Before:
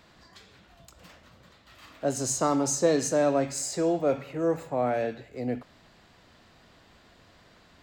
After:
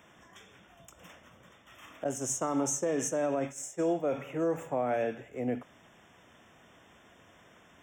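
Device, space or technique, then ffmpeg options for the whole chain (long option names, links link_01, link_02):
PA system with an anti-feedback notch: -filter_complex "[0:a]asettb=1/sr,asplit=3[link_01][link_02][link_03];[link_01]atrim=end=2.044[link_04];[link_02]atrim=start=2.04:end=4.04,asetpts=PTS-STARTPTS,afade=type=in:duration=0.004:curve=qsin,afade=type=out:start_time=1.996:duration=0.004:curve=qsin,agate=range=-33dB:threshold=-25dB:ratio=3:detection=peak[link_05];[link_03]atrim=start=4.036[link_06];[link_04][link_05]acrossfade=duration=0.004:curve1=hsin:curve2=qsin[link_07];[link_07][link_06]acrossfade=duration=0.004:curve1=qsin:curve2=hsin,highpass=frequency=140:poles=1,asuperstop=centerf=4400:order=20:qfactor=2.6,alimiter=limit=-21.5dB:level=0:latency=1:release=65"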